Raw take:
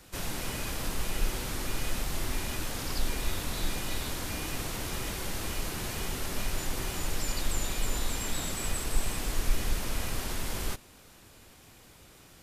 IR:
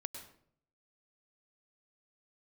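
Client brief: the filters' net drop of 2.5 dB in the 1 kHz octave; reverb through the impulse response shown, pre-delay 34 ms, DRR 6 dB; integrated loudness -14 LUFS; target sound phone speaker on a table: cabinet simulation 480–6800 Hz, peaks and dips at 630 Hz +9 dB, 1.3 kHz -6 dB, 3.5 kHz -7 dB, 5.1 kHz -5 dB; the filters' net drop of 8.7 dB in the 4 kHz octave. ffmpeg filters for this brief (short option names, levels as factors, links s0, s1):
-filter_complex "[0:a]equalizer=f=1000:t=o:g=-3.5,equalizer=f=4000:t=o:g=-5.5,asplit=2[s0][s1];[1:a]atrim=start_sample=2205,adelay=34[s2];[s1][s2]afir=irnorm=-1:irlink=0,volume=0.631[s3];[s0][s3]amix=inputs=2:normalize=0,highpass=f=480:w=0.5412,highpass=f=480:w=1.3066,equalizer=f=630:t=q:w=4:g=9,equalizer=f=1300:t=q:w=4:g=-6,equalizer=f=3500:t=q:w=4:g=-7,equalizer=f=5100:t=q:w=4:g=-5,lowpass=f=6800:w=0.5412,lowpass=f=6800:w=1.3066,volume=20"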